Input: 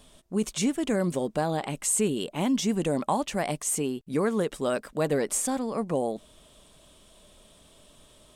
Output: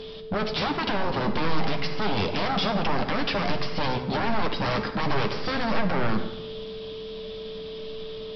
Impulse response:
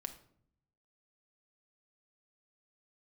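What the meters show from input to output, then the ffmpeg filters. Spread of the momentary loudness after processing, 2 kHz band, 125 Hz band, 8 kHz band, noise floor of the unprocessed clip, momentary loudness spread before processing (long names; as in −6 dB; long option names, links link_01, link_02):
11 LU, +8.5 dB, +4.0 dB, below −20 dB, −57 dBFS, 4 LU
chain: -filter_complex "[0:a]equalizer=frequency=190:width=1.5:gain=8.5,acrossover=split=470[link_01][link_02];[link_02]alimiter=level_in=0.5dB:limit=-24dB:level=0:latency=1,volume=-0.5dB[link_03];[link_01][link_03]amix=inputs=2:normalize=0,highshelf=frequency=2600:gain=11.5,acompressor=threshold=-23dB:ratio=5,aeval=exprs='0.2*(cos(1*acos(clip(val(0)/0.2,-1,1)))-cos(1*PI/2))+0.0282*(cos(2*acos(clip(val(0)/0.2,-1,1)))-cos(2*PI/2))':channel_layout=same,aeval=exprs='val(0)+0.00708*sin(2*PI*440*n/s)':channel_layout=same,aresample=11025,aeval=exprs='0.0316*(abs(mod(val(0)/0.0316+3,4)-2)-1)':channel_layout=same,aresample=44100[link_04];[1:a]atrim=start_sample=2205,asetrate=22491,aresample=44100[link_05];[link_04][link_05]afir=irnorm=-1:irlink=0,volume=8dB"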